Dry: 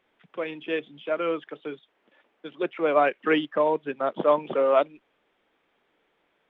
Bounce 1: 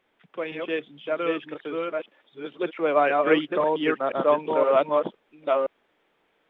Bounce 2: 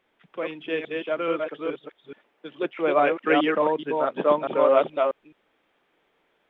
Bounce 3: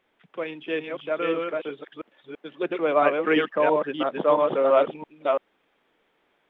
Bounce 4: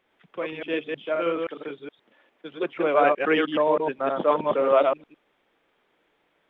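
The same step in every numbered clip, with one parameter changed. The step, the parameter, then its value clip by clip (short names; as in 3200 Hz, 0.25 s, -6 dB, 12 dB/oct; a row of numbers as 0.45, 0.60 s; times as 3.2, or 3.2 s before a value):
reverse delay, time: 0.515, 0.213, 0.336, 0.105 s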